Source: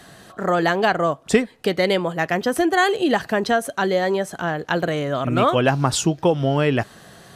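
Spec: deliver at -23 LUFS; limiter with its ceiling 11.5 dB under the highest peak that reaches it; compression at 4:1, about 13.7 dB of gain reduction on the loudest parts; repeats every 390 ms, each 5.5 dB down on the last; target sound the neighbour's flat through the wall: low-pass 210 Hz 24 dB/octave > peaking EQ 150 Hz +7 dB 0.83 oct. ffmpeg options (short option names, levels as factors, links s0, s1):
-af "acompressor=threshold=0.0355:ratio=4,alimiter=level_in=1.06:limit=0.0631:level=0:latency=1,volume=0.944,lowpass=f=210:w=0.5412,lowpass=f=210:w=1.3066,equalizer=f=150:t=o:w=0.83:g=7,aecho=1:1:390|780|1170|1560|1950|2340|2730:0.531|0.281|0.149|0.079|0.0419|0.0222|0.0118,volume=4.22"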